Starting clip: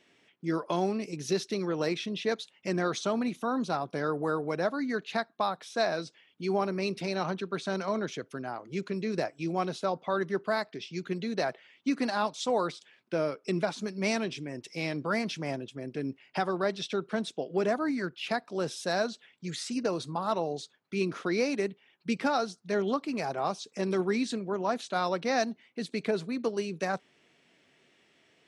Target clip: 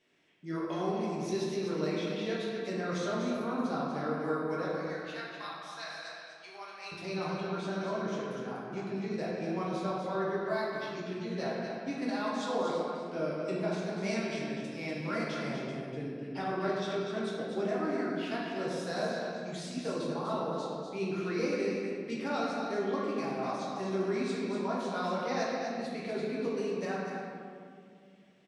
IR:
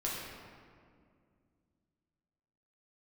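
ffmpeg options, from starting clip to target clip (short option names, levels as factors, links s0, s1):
-filter_complex "[0:a]asettb=1/sr,asplit=3[s0][s1][s2];[s0]atrim=end=4.654[s3];[s1]atrim=start=4.65:end=6.92,asetpts=PTS-STARTPTS,afade=t=in:d=0.004:c=qsin,afade=t=out:st=2.266:d=0.004:c=qsin,highpass=1400[s4];[s2]atrim=start=6.916[s5];[s3][s4]acrossfade=d=0.004:c1=hsin:c2=qsin[s6];[s6][s5]acrossfade=d=0.004:c1=qsin:c2=hsin,aecho=1:1:245:0.473[s7];[1:a]atrim=start_sample=2205[s8];[s7][s8]afir=irnorm=-1:irlink=0,volume=0.376"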